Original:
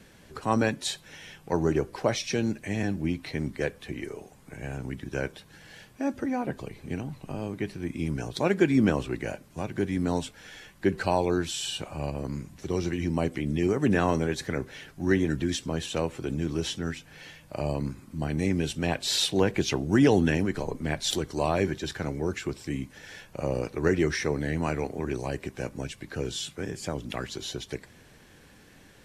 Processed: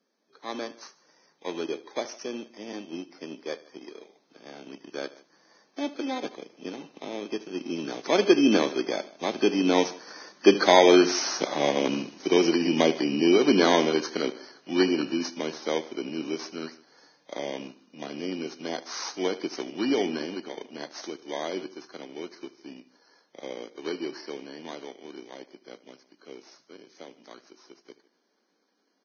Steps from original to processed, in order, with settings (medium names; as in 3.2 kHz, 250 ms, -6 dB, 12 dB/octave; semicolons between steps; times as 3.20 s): bit-reversed sample order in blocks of 16 samples; Doppler pass-by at 11.35 s, 13 m/s, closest 18 m; feedback delay 75 ms, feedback 24%, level -15 dB; waveshaping leveller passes 1; level rider gain up to 6.5 dB; high-pass 260 Hz 24 dB/octave; delay 153 ms -22 dB; trim +2 dB; Vorbis 16 kbps 16 kHz